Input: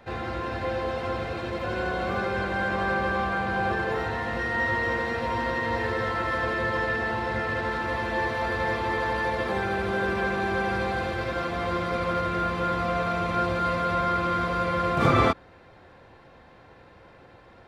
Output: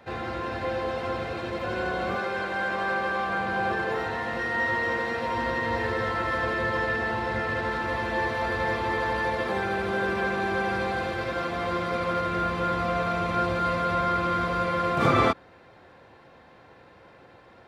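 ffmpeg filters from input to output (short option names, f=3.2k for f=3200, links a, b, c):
-af "asetnsamples=n=441:p=0,asendcmd='2.16 highpass f 380;3.29 highpass f 170;5.37 highpass f 40;9.35 highpass f 110;12.31 highpass f 41;14.66 highpass f 120',highpass=f=95:p=1"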